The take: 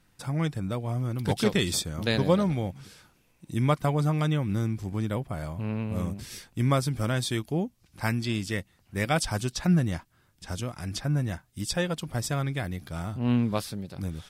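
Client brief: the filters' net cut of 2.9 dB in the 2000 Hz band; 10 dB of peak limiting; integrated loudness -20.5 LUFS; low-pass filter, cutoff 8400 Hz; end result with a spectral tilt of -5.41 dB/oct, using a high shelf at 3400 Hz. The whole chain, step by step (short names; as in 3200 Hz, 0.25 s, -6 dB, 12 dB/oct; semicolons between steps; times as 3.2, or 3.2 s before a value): LPF 8400 Hz; bell 2000 Hz -5.5 dB; high shelf 3400 Hz +6 dB; gain +10.5 dB; limiter -9 dBFS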